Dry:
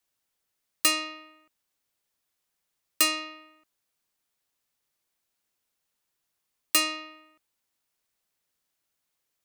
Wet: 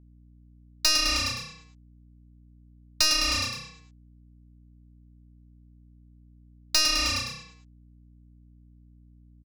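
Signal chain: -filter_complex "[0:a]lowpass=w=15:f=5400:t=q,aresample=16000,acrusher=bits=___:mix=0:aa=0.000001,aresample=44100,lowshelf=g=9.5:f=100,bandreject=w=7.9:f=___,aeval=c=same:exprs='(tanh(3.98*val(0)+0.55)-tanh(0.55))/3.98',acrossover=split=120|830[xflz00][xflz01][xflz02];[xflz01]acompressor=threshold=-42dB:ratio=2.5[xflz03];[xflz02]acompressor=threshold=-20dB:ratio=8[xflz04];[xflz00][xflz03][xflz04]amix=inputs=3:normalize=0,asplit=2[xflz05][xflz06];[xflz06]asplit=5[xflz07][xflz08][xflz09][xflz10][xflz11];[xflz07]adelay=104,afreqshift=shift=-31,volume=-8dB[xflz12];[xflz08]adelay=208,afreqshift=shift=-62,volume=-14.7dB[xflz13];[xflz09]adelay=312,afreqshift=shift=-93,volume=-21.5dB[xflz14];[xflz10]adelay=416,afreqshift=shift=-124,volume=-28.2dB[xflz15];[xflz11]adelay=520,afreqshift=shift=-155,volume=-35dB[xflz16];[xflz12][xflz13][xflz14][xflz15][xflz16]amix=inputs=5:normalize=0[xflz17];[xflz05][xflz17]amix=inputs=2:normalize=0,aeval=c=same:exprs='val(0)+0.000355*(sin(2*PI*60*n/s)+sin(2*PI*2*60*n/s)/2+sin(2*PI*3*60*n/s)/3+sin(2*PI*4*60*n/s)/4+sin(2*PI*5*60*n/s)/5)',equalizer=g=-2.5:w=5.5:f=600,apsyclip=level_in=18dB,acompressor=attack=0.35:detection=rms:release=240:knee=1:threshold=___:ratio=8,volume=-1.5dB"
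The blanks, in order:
6, 1600, -15dB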